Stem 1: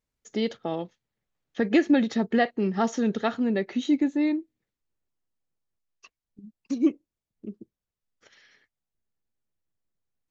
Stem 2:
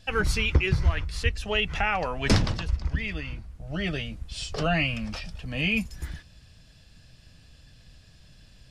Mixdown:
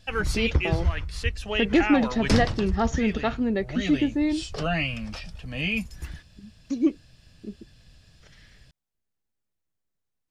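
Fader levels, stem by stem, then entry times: 0.0, -1.5 dB; 0.00, 0.00 s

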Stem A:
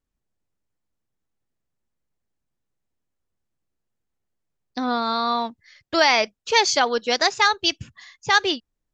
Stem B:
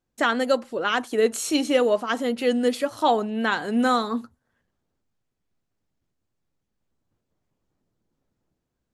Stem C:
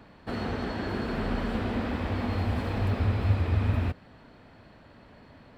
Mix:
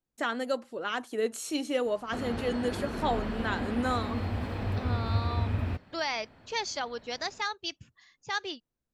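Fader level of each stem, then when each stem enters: -14.5, -9.0, -4.0 dB; 0.00, 0.00, 1.85 s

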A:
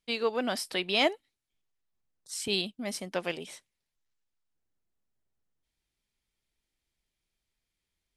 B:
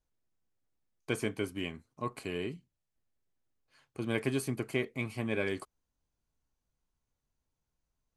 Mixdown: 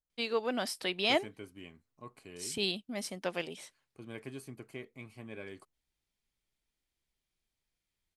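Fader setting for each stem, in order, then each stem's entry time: -3.0, -12.5 dB; 0.10, 0.00 s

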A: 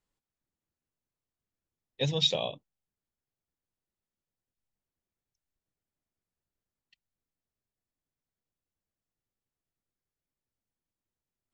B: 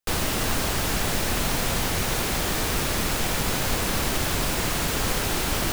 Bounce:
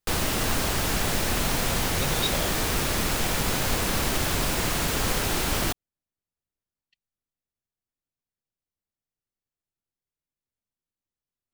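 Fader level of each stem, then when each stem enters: -4.0, -0.5 dB; 0.00, 0.00 s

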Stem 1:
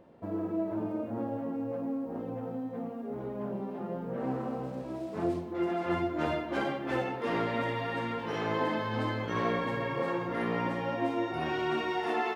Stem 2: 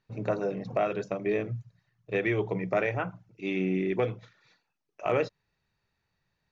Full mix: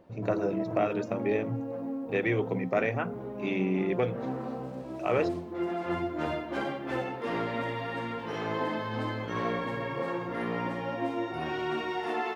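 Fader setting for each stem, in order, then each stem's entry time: -1.0, -0.5 dB; 0.00, 0.00 s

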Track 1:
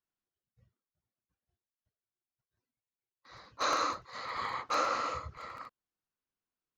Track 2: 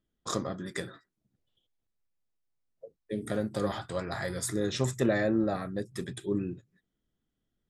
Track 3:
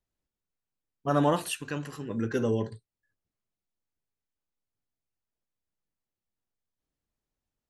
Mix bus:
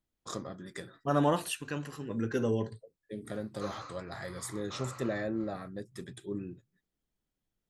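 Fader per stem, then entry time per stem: -15.5, -7.0, -2.5 dB; 0.00, 0.00, 0.00 s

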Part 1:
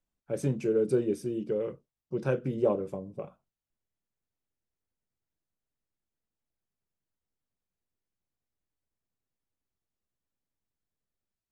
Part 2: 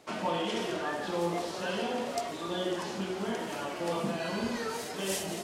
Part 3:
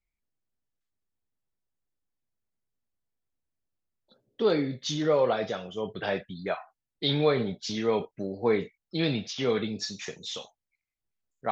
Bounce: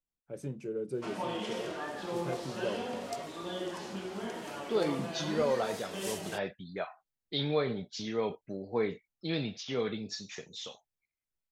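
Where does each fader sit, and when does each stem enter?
-10.0, -5.0, -6.0 dB; 0.00, 0.95, 0.30 s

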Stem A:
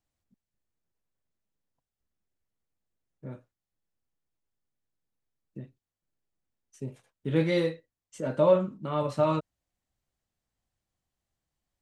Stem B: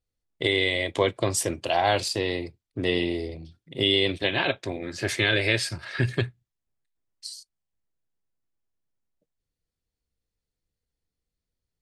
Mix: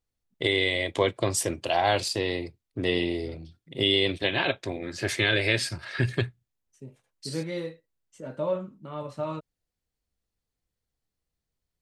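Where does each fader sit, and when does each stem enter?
-7.0, -1.0 dB; 0.00, 0.00 s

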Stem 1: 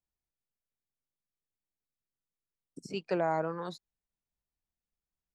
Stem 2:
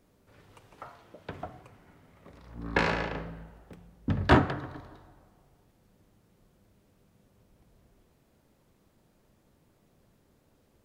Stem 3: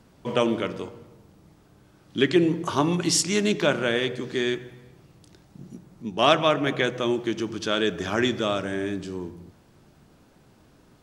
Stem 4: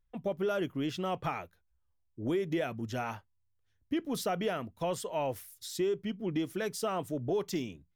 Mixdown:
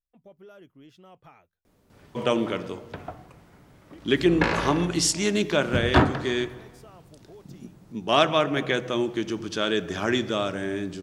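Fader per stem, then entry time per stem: off, +2.0 dB, -1.0 dB, -17.5 dB; off, 1.65 s, 1.90 s, 0.00 s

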